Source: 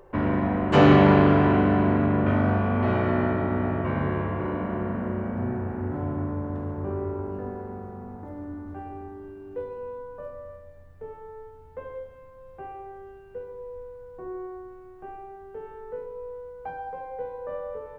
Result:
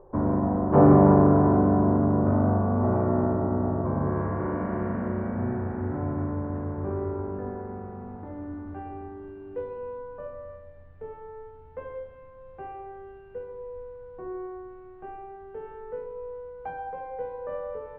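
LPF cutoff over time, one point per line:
LPF 24 dB/oct
3.98 s 1100 Hz
4.21 s 1500 Hz
4.85 s 2200 Hz
7.62 s 2200 Hz
8.08 s 3400 Hz

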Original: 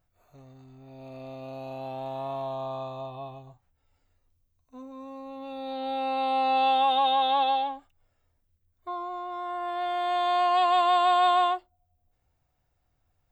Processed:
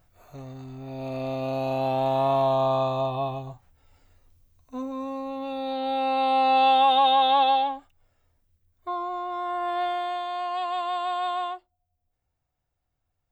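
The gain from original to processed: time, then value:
4.79 s +11 dB
5.83 s +4 dB
9.81 s +4 dB
10.28 s -6.5 dB

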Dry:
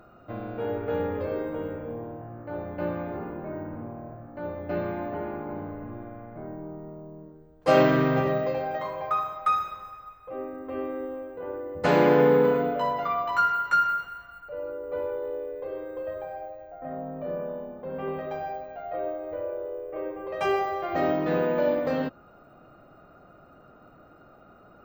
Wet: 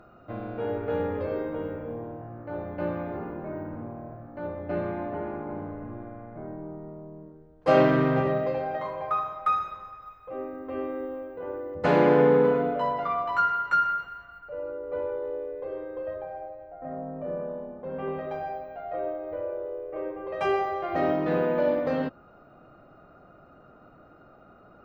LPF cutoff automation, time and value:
LPF 6 dB/oct
5300 Hz
from 4.47 s 2700 Hz
from 10.02 s 7200 Hz
from 11.74 s 2700 Hz
from 16.16 s 1600 Hz
from 17.84 s 3600 Hz

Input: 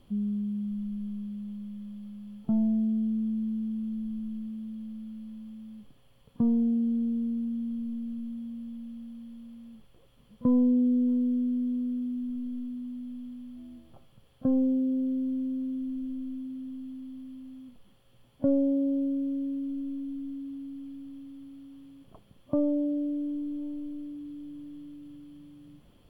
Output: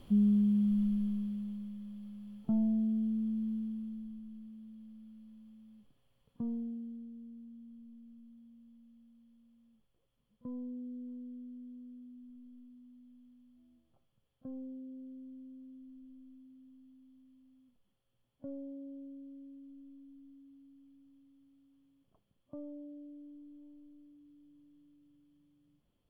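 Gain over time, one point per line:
0.84 s +4 dB
1.78 s -4.5 dB
3.54 s -4.5 dB
4.24 s -12.5 dB
6.53 s -12.5 dB
7.1 s -19.5 dB

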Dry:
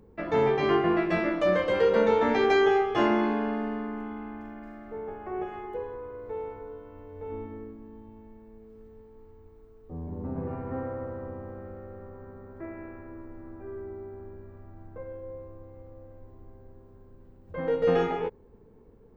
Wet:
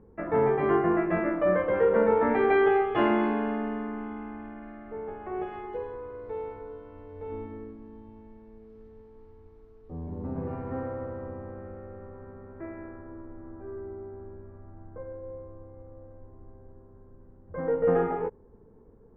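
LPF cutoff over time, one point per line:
LPF 24 dB/oct
2.15 s 1900 Hz
3.11 s 3100 Hz
5 s 3100 Hz
5.64 s 5700 Hz
10.72 s 5700 Hz
11.38 s 2900 Hz
12.51 s 2900 Hz
13.02 s 1700 Hz

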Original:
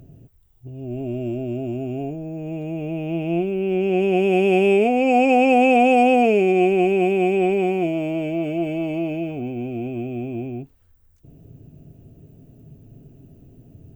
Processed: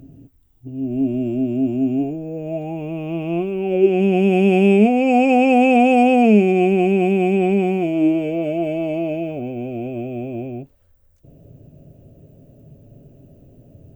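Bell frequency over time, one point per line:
bell +14.5 dB 0.28 oct
1.95 s 270 Hz
2.92 s 1100 Hz
3.56 s 1100 Hz
4 s 210 Hz
7.76 s 210 Hz
8.48 s 570 Hz

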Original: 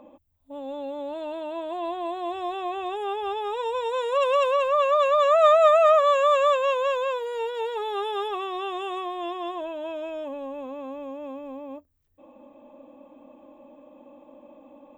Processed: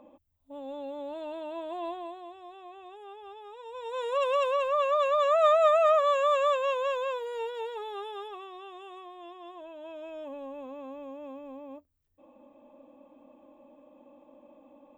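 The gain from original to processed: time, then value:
1.88 s -5 dB
2.37 s -17 dB
3.63 s -17 dB
4.04 s -5 dB
7.42 s -5 dB
8.64 s -14.5 dB
9.41 s -14.5 dB
10.34 s -6 dB

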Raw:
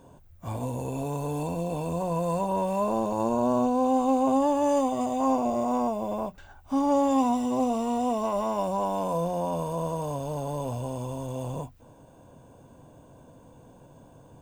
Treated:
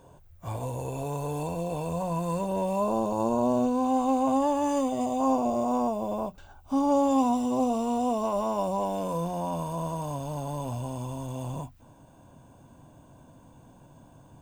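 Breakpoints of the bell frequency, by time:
bell -9 dB 0.51 oct
1.82 s 240 Hz
2.84 s 1900 Hz
3.39 s 1900 Hz
3.95 s 400 Hz
4.55 s 400 Hz
5.18 s 1900 Hz
8.65 s 1900 Hz
9.34 s 470 Hz

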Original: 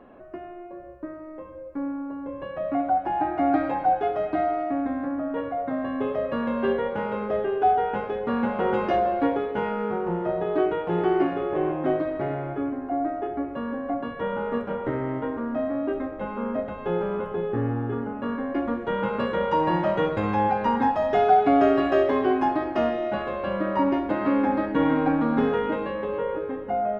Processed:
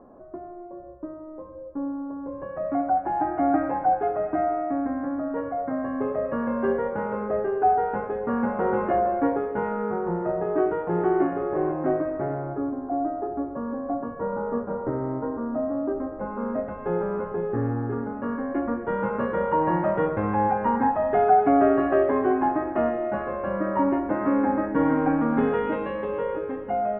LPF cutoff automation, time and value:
LPF 24 dB/oct
2.03 s 1200 Hz
2.69 s 1800 Hz
12.02 s 1800 Hz
12.72 s 1300 Hz
15.99 s 1300 Hz
16.66 s 1900 Hz
24.85 s 1900 Hz
25.79 s 3000 Hz

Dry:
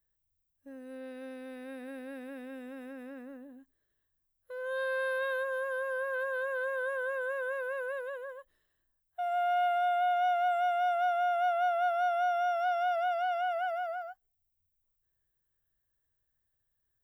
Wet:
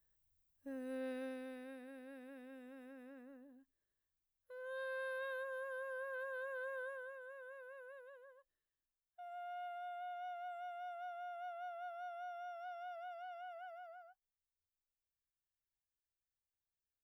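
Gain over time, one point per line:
1.12 s +0.5 dB
1.88 s -11 dB
6.8 s -11 dB
7.2 s -18.5 dB

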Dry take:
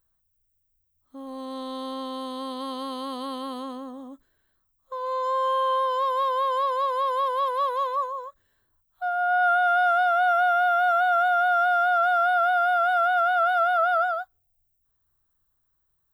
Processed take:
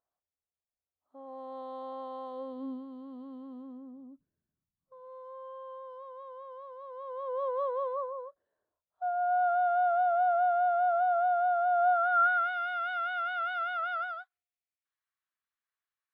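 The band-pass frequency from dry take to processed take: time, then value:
band-pass, Q 2.5
2.29 s 690 Hz
2.86 s 170 Hz
6.78 s 170 Hz
7.51 s 570 Hz
11.7 s 570 Hz
12.55 s 2300 Hz

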